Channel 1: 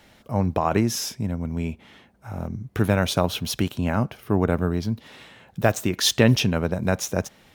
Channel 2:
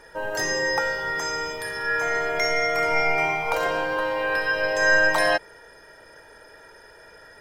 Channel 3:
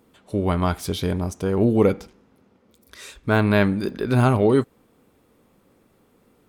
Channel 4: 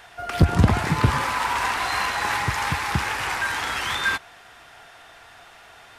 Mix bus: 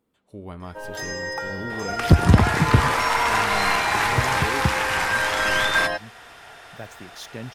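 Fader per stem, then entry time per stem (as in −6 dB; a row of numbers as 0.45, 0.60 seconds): −19.0, −6.0, −15.5, +2.5 decibels; 1.15, 0.60, 0.00, 1.70 seconds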